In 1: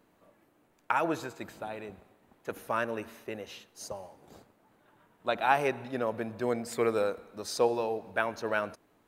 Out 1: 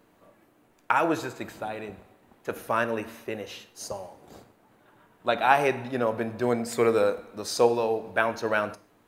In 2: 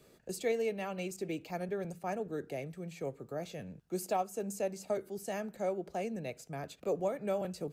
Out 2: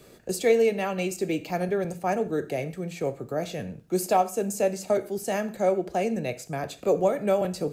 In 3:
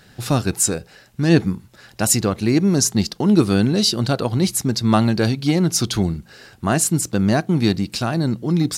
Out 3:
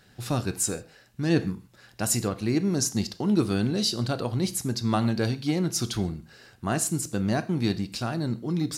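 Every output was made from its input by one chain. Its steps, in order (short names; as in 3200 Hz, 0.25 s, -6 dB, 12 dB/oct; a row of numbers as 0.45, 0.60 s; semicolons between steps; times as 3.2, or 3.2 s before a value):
non-linear reverb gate 0.17 s falling, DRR 11 dB; match loudness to -27 LUFS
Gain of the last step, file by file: +5.0, +10.0, -8.5 dB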